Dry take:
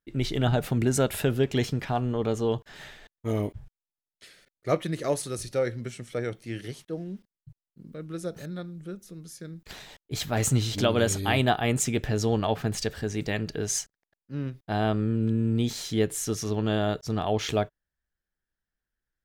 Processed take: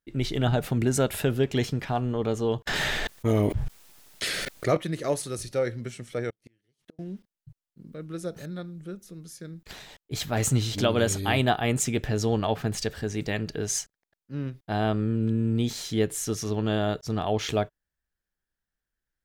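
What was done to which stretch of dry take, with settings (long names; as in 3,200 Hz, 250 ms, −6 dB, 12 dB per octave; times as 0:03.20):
0:02.67–0:04.77: envelope flattener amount 70%
0:06.30–0:06.99: gate with flip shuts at −33 dBFS, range −37 dB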